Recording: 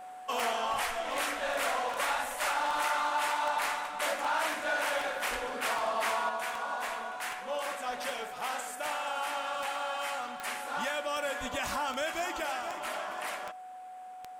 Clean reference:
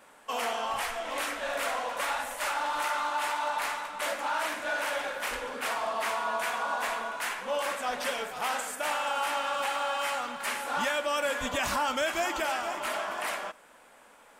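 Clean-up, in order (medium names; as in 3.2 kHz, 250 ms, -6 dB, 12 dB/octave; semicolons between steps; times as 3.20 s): de-click; band-stop 740 Hz, Q 30; trim 0 dB, from 6.29 s +4.5 dB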